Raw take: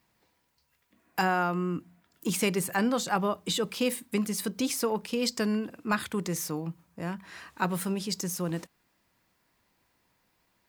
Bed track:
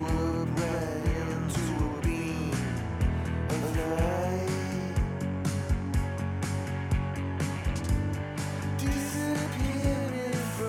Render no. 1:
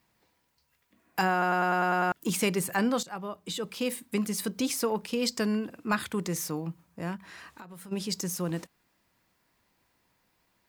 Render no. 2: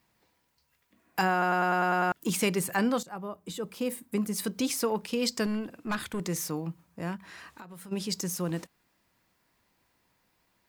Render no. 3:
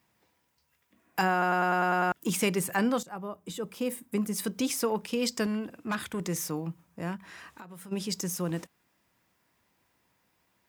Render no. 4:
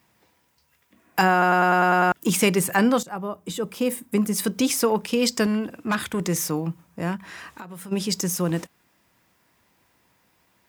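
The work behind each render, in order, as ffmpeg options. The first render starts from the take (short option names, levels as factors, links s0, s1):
-filter_complex "[0:a]asplit=3[s0][s1][s2];[s0]afade=t=out:st=7.16:d=0.02[s3];[s1]acompressor=threshold=0.00794:ratio=16:attack=3.2:release=140:knee=1:detection=peak,afade=t=in:st=7.16:d=0.02,afade=t=out:st=7.91:d=0.02[s4];[s2]afade=t=in:st=7.91:d=0.02[s5];[s3][s4][s5]amix=inputs=3:normalize=0,asplit=10[s6][s7][s8][s9][s10][s11][s12][s13][s14][s15];[s6]atrim=end=1.422[s16];[s7]atrim=start=1.318:end=1.422[s17];[s8]atrim=start=1.318:end=1.422[s18];[s9]atrim=start=1.318:end=1.422[s19];[s10]atrim=start=1.318:end=1.422[s20];[s11]atrim=start=1.318:end=1.422[s21];[s12]atrim=start=1.318:end=1.422[s22];[s13]atrim=start=1.318:end=1.422[s23];[s14]atrim=start=2.118:end=3.03,asetpts=PTS-STARTPTS,afade=t=out:st=0.908:d=0.004:c=hsin:silence=0.211349[s24];[s15]atrim=start=3.03,asetpts=PTS-STARTPTS,afade=t=in:d=1.25:silence=0.211349[s25];[s16][s17]acrossfade=d=0.004:c1=hsin:c2=hsin[s26];[s26][s18]acrossfade=d=0.004:c1=hsin:c2=hsin[s27];[s27][s19]acrossfade=d=0.004:c1=hsin:c2=hsin[s28];[s28][s20]acrossfade=d=0.004:c1=hsin:c2=hsin[s29];[s29][s21]acrossfade=d=0.004:c1=hsin:c2=hsin[s30];[s30][s22]acrossfade=d=0.004:c1=hsin:c2=hsin[s31];[s31][s23]acrossfade=d=0.004:c1=hsin:c2=hsin[s32];[s24][s25]concat=n=2:v=0:a=1[s33];[s32][s33]acrossfade=d=0.004:c1=hsin:c2=hsin"
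-filter_complex "[0:a]asettb=1/sr,asplit=3[s0][s1][s2];[s0]atrim=end=2.984[s3];[s1]atrim=start=2.98:end=4.36,asetpts=PTS-STARTPTS,afade=t=in:d=0.004:c=qsin,afade=t=out:st=1.376:d=0.004:c=qsin,equalizer=f=3600:w=0.52:g=-7.5[s4];[s2]atrim=start=4.356[s5];[s3][s4]acrossfade=d=0.004:c1=hsin:c2=qsin[s6];[s6][s5]acrossfade=d=0.004:c1=qsin:c2=hsin,asettb=1/sr,asplit=3[s7][s8][s9];[s7]atrim=end=5.464[s10];[s8]atrim=start=5.46:end=6.2,asetpts=PTS-STARTPTS,afade=t=in:d=0.004:c=qsin,afade=t=out:st=0.736:d=0.004:c=qsin,aeval=exprs='(tanh(14.1*val(0)+0.35)-tanh(0.35))/14.1':c=same[s11];[s9]atrim=start=6.196[s12];[s10][s11]acrossfade=d=0.004:c1=hsin:c2=qsin[s13];[s13][s12]acrossfade=d=0.004:c1=qsin:c2=hsin"
-af "highpass=54,equalizer=f=4300:w=7.7:g=-5.5"
-af "volume=2.37"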